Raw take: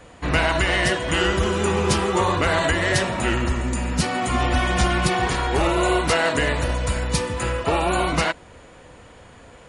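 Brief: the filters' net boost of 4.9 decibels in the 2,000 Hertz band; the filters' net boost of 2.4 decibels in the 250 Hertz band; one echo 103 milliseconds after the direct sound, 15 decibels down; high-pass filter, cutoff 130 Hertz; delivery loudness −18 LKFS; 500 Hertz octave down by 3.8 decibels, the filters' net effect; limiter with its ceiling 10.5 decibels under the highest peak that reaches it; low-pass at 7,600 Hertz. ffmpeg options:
ffmpeg -i in.wav -af "highpass=130,lowpass=7600,equalizer=frequency=250:width_type=o:gain=7,equalizer=frequency=500:width_type=o:gain=-8.5,equalizer=frequency=2000:width_type=o:gain=6.5,alimiter=limit=-13.5dB:level=0:latency=1,aecho=1:1:103:0.178,volume=4.5dB" out.wav

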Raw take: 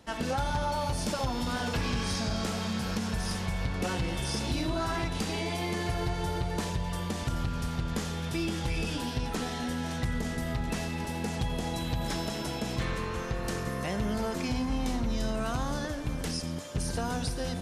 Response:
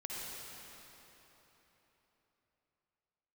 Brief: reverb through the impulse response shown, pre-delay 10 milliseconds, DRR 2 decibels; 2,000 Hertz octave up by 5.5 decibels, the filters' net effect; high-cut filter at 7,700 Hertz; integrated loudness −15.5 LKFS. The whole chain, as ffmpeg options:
-filter_complex "[0:a]lowpass=7700,equalizer=frequency=2000:width_type=o:gain=7,asplit=2[link_01][link_02];[1:a]atrim=start_sample=2205,adelay=10[link_03];[link_02][link_03]afir=irnorm=-1:irlink=0,volume=-3dB[link_04];[link_01][link_04]amix=inputs=2:normalize=0,volume=13.5dB"

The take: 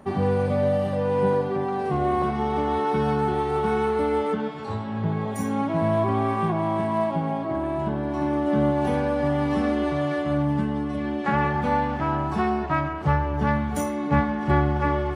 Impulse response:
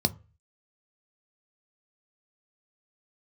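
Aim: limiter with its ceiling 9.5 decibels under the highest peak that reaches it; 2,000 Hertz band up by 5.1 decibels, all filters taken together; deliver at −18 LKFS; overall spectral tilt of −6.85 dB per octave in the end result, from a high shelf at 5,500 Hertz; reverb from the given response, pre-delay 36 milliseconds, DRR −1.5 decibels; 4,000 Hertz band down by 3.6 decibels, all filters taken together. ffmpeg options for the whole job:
-filter_complex "[0:a]equalizer=frequency=2000:width_type=o:gain=8.5,equalizer=frequency=4000:width_type=o:gain=-8.5,highshelf=frequency=5500:gain=-3.5,alimiter=limit=-15dB:level=0:latency=1,asplit=2[link_01][link_02];[1:a]atrim=start_sample=2205,adelay=36[link_03];[link_02][link_03]afir=irnorm=-1:irlink=0,volume=-7dB[link_04];[link_01][link_04]amix=inputs=2:normalize=0,volume=-2.5dB"

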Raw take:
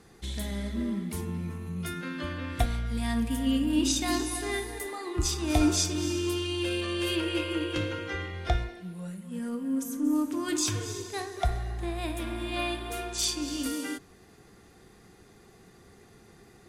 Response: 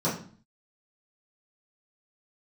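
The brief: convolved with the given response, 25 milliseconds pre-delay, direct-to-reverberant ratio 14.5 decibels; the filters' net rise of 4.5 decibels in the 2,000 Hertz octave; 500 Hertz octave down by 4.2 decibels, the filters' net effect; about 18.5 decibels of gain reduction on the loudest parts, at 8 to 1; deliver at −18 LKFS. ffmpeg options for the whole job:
-filter_complex "[0:a]equalizer=frequency=500:width_type=o:gain=-7.5,equalizer=frequency=2000:width_type=o:gain=6,acompressor=threshold=-41dB:ratio=8,asplit=2[link_01][link_02];[1:a]atrim=start_sample=2205,adelay=25[link_03];[link_02][link_03]afir=irnorm=-1:irlink=0,volume=-25.5dB[link_04];[link_01][link_04]amix=inputs=2:normalize=0,volume=25dB"

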